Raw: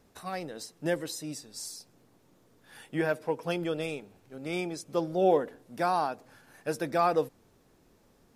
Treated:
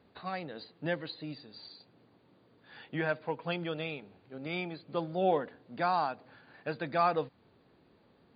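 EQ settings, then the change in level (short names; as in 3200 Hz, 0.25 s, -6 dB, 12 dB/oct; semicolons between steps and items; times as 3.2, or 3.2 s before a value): dynamic EQ 390 Hz, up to -7 dB, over -42 dBFS, Q 1.1; HPF 80 Hz; brick-wall FIR low-pass 4800 Hz; 0.0 dB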